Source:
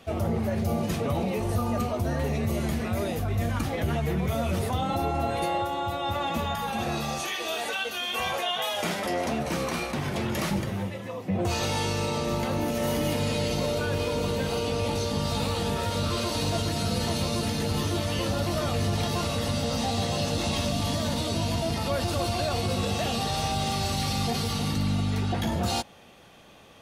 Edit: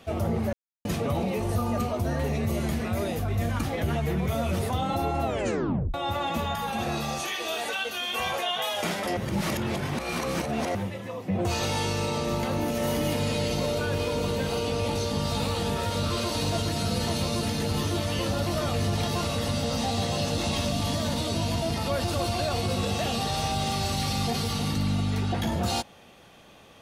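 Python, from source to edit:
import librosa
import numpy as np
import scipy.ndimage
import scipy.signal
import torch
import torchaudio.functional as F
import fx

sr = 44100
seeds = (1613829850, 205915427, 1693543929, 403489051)

y = fx.edit(x, sr, fx.silence(start_s=0.53, length_s=0.32),
    fx.tape_stop(start_s=5.24, length_s=0.7),
    fx.reverse_span(start_s=9.17, length_s=1.58), tone=tone)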